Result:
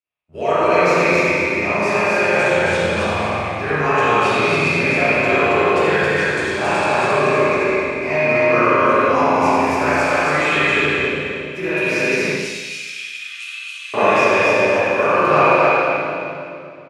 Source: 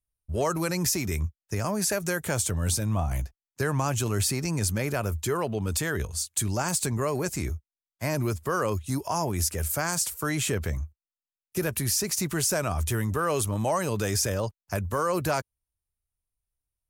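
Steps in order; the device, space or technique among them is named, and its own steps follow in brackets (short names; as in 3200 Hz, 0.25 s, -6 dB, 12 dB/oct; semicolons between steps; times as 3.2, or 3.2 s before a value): station announcement (BPF 310–3800 Hz; bell 2500 Hz +11 dB 0.34 oct; loudspeakers at several distances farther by 30 m -10 dB, 93 m -2 dB; reverb RT60 2.6 s, pre-delay 9 ms, DRR -5 dB); 12.31–13.94 inverse Chebyshev high-pass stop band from 880 Hz, stop band 60 dB; spring tank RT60 1.2 s, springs 34/47 ms, chirp 25 ms, DRR -9.5 dB; gain -3 dB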